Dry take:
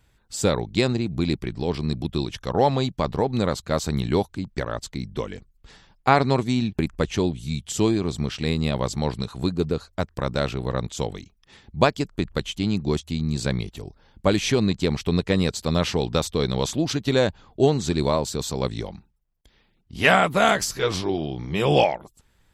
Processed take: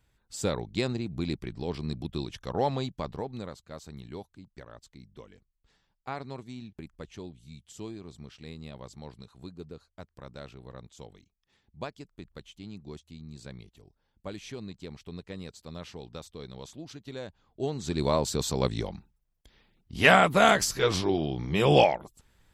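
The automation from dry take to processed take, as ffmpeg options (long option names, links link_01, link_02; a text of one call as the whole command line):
ffmpeg -i in.wav -af "volume=10dB,afade=type=out:start_time=2.75:duration=0.83:silence=0.266073,afade=type=in:start_time=17.29:duration=0.46:silence=0.421697,afade=type=in:start_time=17.75:duration=0.54:silence=0.298538" out.wav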